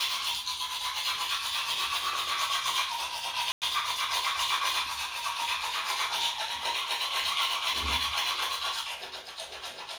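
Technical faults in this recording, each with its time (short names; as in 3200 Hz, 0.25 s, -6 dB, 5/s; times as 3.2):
3.52–3.62 gap 98 ms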